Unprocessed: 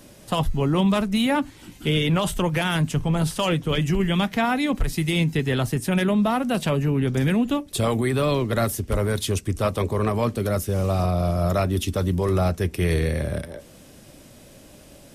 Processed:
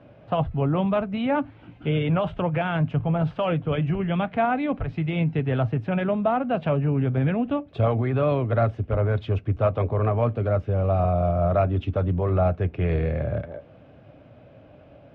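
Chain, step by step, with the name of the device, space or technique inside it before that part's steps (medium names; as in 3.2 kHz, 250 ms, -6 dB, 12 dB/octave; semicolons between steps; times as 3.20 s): bass cabinet (cabinet simulation 71–2300 Hz, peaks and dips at 110 Hz +5 dB, 210 Hz -7 dB, 360 Hz -6 dB, 670 Hz +5 dB, 1 kHz -4 dB, 1.9 kHz -9 dB)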